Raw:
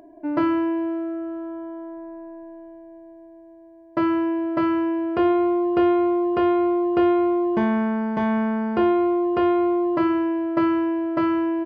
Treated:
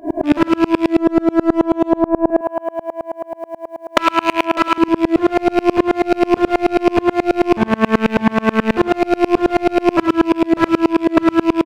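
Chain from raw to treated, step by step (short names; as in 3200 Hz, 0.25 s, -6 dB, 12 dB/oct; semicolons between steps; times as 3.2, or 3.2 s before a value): rattling part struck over -33 dBFS, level -28 dBFS; 2.3–4.78 HPF 790 Hz 12 dB/oct; compressor 8:1, threshold -31 dBFS, peak gain reduction 15.5 dB; hard clip -31 dBFS, distortion -16 dB; echo 0.107 s -6 dB; maximiser +35 dB; dB-ramp tremolo swelling 9.3 Hz, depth 32 dB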